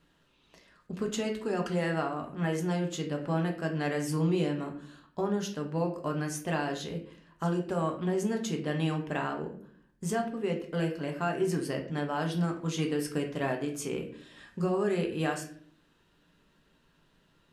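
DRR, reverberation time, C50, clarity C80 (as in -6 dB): 2.0 dB, 0.55 s, 9.0 dB, 13.0 dB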